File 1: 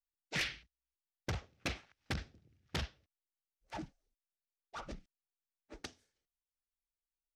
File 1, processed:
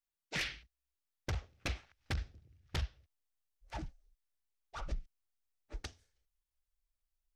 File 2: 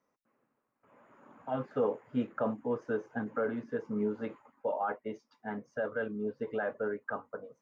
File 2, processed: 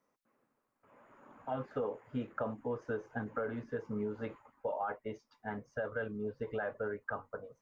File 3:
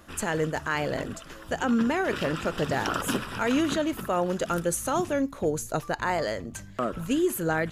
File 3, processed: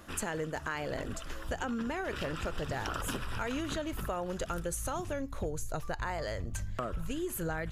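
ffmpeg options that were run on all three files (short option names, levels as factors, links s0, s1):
-af "asubboost=boost=8:cutoff=80,acompressor=threshold=0.0251:ratio=6"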